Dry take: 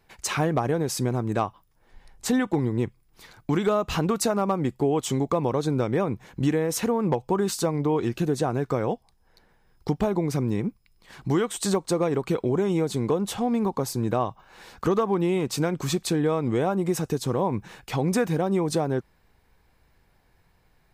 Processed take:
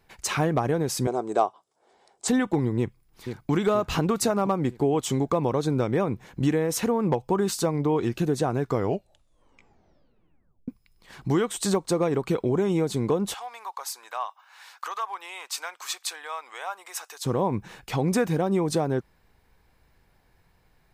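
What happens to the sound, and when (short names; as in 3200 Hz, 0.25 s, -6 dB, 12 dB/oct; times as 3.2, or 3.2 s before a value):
1.07–2.28 speaker cabinet 370–8800 Hz, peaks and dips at 400 Hz +8 dB, 700 Hz +8 dB, 1800 Hz -8 dB, 2600 Hz -6 dB, 8000 Hz +8 dB
2.78–3.51 echo throw 0.48 s, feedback 55%, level -8 dB
8.65 tape stop 2.03 s
13.34–17.25 HPF 880 Hz 24 dB/oct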